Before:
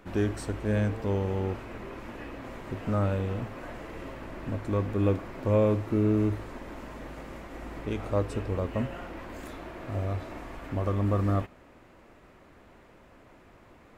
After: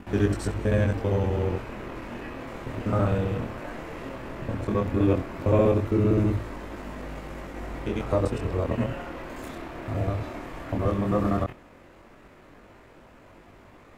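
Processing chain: local time reversal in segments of 65 ms; chorus 0.15 Hz, delay 20 ms, depth 7 ms; gain +7 dB

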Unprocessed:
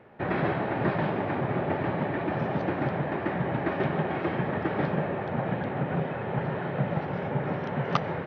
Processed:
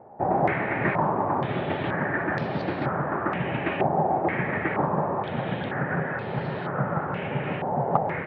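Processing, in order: stepped low-pass 2.1 Hz 800–4500 Hz

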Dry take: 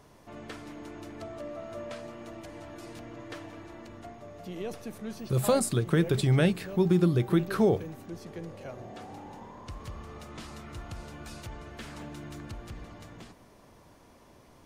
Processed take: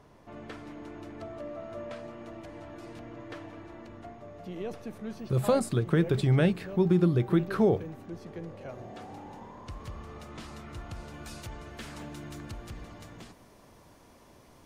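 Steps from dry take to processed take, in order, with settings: high shelf 4400 Hz -10.5 dB, from 8.69 s -3.5 dB, from 11.14 s +2.5 dB

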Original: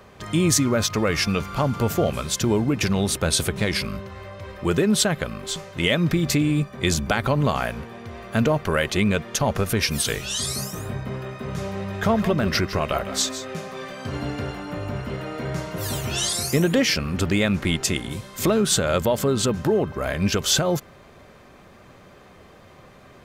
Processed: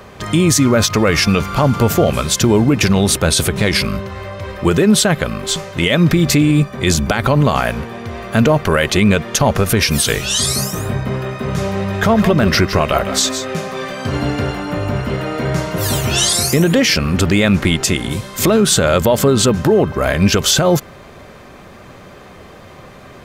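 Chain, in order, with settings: maximiser +12.5 dB; gain -2.5 dB

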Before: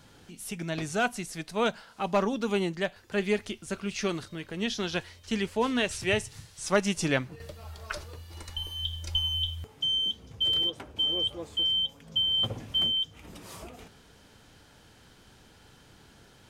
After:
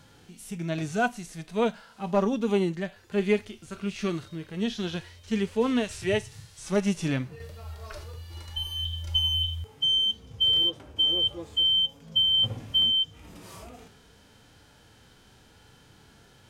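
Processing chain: harmonic-percussive split percussive -15 dB; gain +4 dB

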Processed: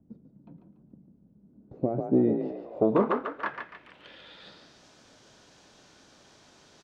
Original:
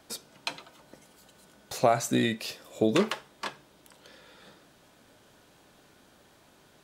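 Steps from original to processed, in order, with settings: frequency-shifting echo 0.144 s, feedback 38%, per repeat +37 Hz, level -7.5 dB; added harmonics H 5 -25 dB, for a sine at -8.5 dBFS; low-pass sweep 200 Hz -> 5900 Hz, 1.4–4.81; gain -2 dB

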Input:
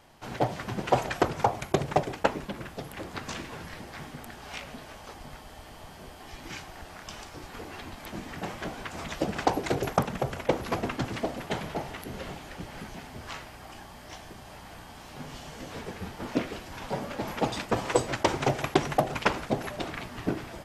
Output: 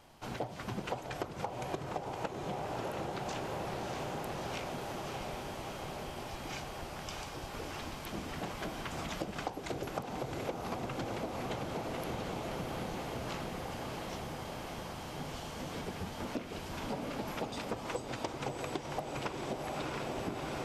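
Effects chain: bell 1800 Hz -4 dB 0.4 oct; on a send: diffused feedback echo 0.649 s, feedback 73%, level -5 dB; on the sum: compressor 12:1, threshold -32 dBFS, peak gain reduction 17 dB; gain -2 dB

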